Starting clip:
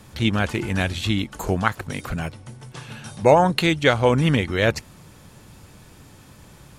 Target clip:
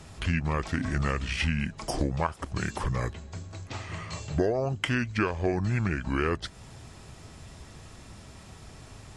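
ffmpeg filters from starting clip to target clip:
-af "acompressor=threshold=0.0631:ratio=6,asetrate=32667,aresample=44100"

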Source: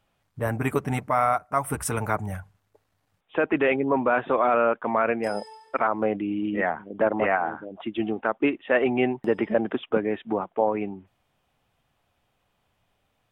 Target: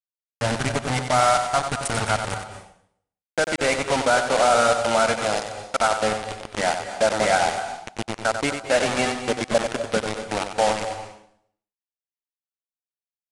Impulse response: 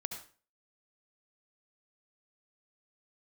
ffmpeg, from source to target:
-filter_complex "[0:a]aecho=1:1:1.4:0.62,acrusher=bits=3:mix=0:aa=0.000001,asplit=2[s0][s1];[1:a]atrim=start_sample=2205,asetrate=25137,aresample=44100,adelay=93[s2];[s1][s2]afir=irnorm=-1:irlink=0,volume=0.355[s3];[s0][s3]amix=inputs=2:normalize=0,aresample=22050,aresample=44100"

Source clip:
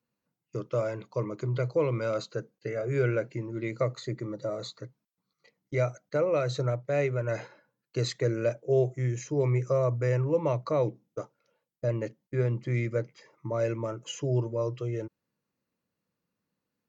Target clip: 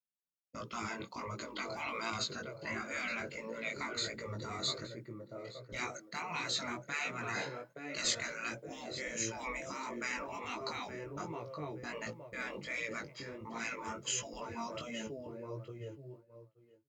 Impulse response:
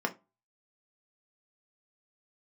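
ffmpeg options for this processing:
-filter_complex "[0:a]bandreject=f=6000:w=11,asplit=2[s0][s1];[s1]adelay=870,lowpass=f=4400:p=1,volume=0.2,asplit=2[s2][s3];[s3]adelay=870,lowpass=f=4400:p=1,volume=0.24,asplit=2[s4][s5];[s5]adelay=870,lowpass=f=4400:p=1,volume=0.24[s6];[s0][s2][s4][s6]amix=inputs=4:normalize=0,agate=range=0.0224:threshold=0.00282:ratio=3:detection=peak,asettb=1/sr,asplit=3[s7][s8][s9];[s7]atrim=end=5.744[s10];[s8]atrim=start=5.74:end=8.05,asetpts=PTS-STARTPTS,afade=t=in:d=0.004:c=qsin,afade=t=out:st=2.306:d=0.004:c=qsin,highpass=f=170:w=0.5412,highpass=f=170:w=1.3066[s11];[s9]atrim=start=8.046[s12];[s10][s11]acrossfade=d=0.004:c1=hsin:c2=qsin[s13];[s13][s12]acrossfade=d=0.004:c1=qsin:c2=hsin,afftfilt=real='re*lt(hypot(re,im),0.0562)':imag='im*lt(hypot(re,im),0.0562)':win_size=1024:overlap=0.75,flanger=delay=17.5:depth=4.1:speed=1.4,adynamicequalizer=threshold=0.00112:dfrequency=2400:dqfactor=0.7:tfrequency=2400:tqfactor=0.7:attack=5:release=100:ratio=0.375:range=2.5:mode=boostabove:tftype=highshelf,volume=2.11"

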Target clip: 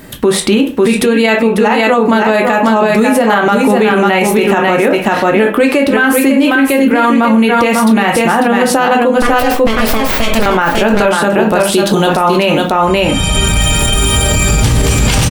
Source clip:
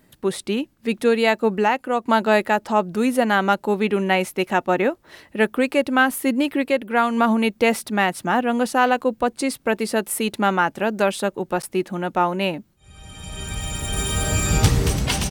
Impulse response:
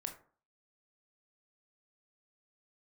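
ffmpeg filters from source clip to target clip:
-filter_complex "[0:a]asettb=1/sr,asplit=3[s0][s1][s2];[s0]atrim=end=9.174[s3];[s1]atrim=start=9.17:end=10.46,asetpts=PTS-STARTPTS,afade=t=in:d=0.004:c=qsin,afade=t=out:st=1.286:d=0.004:c=qsin,aeval=exprs='abs(val(0))':c=same[s4];[s2]atrim=start=10.456[s5];[s3][s4]acrossfade=d=0.004:c1=hsin:c2=qsin[s6];[s6][s5]acrossfade=d=0.004:c1=qsin:c2=hsin,asplit=3[s7][s8][s9];[s7]afade=t=out:st=11.68:d=0.02[s10];[s8]highshelf=f=2800:t=q:w=3:g=8,afade=t=in:st=11.68:d=0.02,afade=t=out:st=12.15:d=0.02[s11];[s9]afade=t=in:st=12.15:d=0.02[s12];[s10][s11][s12]amix=inputs=3:normalize=0,aecho=1:1:546:0.531[s13];[1:a]atrim=start_sample=2205,asetrate=70560,aresample=44100[s14];[s13][s14]afir=irnorm=-1:irlink=0,acompressor=threshold=0.0282:ratio=6,alimiter=level_in=35.5:limit=0.891:release=50:level=0:latency=1,volume=0.891"

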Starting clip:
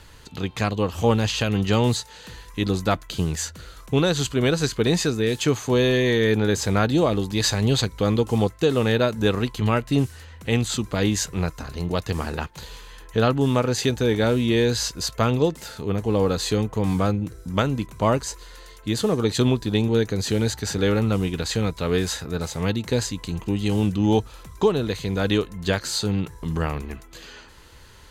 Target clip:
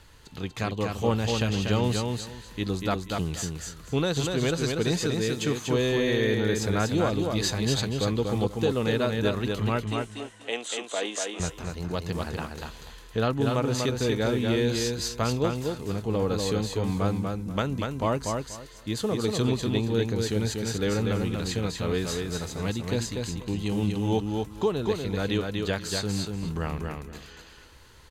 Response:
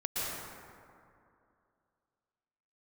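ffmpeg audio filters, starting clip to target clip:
-filter_complex "[0:a]asettb=1/sr,asplit=3[s0][s1][s2];[s0]atrim=end=9.844[s3];[s1]atrim=start=9.84:end=11.4,asetpts=PTS-STARTPTS,afade=t=in:d=0.004:c=qsin,afade=t=out:st=1.556:d=0.004:c=qsin,highpass=f=350:w=0.5412,highpass=f=350:w=1.3066,equalizer=f=360:t=q:w=4:g=-3,equalizer=f=660:t=q:w=4:g=7,equalizer=f=3100:t=q:w=4:g=5,equalizer=f=4600:t=q:w=4:g=-7,equalizer=f=8700:t=q:w=4:g=4,lowpass=f=9500:w=0.5412,lowpass=f=9500:w=1.3066[s4];[s2]atrim=start=11.396[s5];[s3][s4]acrossfade=d=0.004:c1=hsin:c2=qsin[s6];[s6][s5]acrossfade=d=0.004:c1=qsin:c2=hsin,aecho=1:1:241|482|723:0.631|0.133|0.0278,volume=0.501"

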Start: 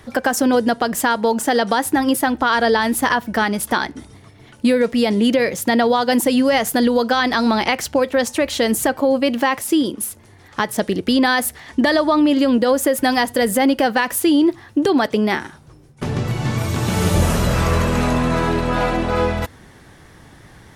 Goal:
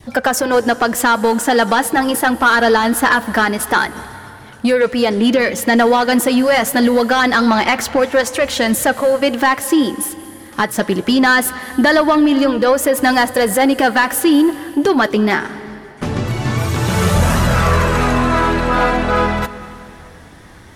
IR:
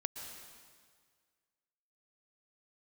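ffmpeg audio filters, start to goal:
-filter_complex "[0:a]adynamicequalizer=threshold=0.0251:dfrequency=1400:dqfactor=1.3:tfrequency=1400:tqfactor=1.3:attack=5:release=100:ratio=0.375:range=3:mode=boostabove:tftype=bell,acontrast=69,flanger=delay=1:depth=4.6:regen=-55:speed=0.23:shape=triangular,asplit=2[s0][s1];[1:a]atrim=start_sample=2205,asetrate=29106,aresample=44100[s2];[s1][s2]afir=irnorm=-1:irlink=0,volume=0.237[s3];[s0][s3]amix=inputs=2:normalize=0,volume=0.891"

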